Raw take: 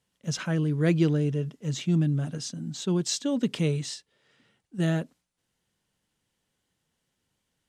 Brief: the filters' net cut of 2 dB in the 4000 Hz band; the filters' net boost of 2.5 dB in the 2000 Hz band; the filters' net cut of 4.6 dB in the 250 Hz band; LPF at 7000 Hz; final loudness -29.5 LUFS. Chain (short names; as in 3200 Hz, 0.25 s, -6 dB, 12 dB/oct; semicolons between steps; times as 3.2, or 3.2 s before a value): LPF 7000 Hz; bell 250 Hz -8.5 dB; bell 2000 Hz +4 dB; bell 4000 Hz -3 dB; gain +1.5 dB